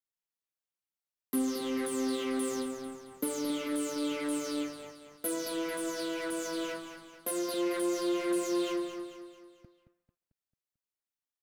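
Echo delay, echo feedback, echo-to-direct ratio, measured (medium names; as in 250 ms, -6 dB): 222 ms, 47%, -8.5 dB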